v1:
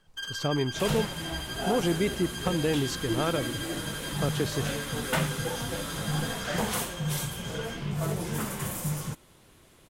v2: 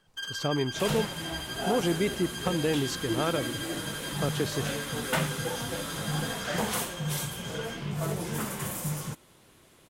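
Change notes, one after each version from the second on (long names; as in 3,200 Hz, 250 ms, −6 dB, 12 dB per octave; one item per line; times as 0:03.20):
master: add low-shelf EQ 65 Hz −10.5 dB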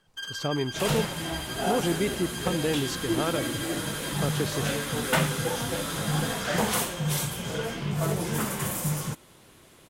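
second sound +4.0 dB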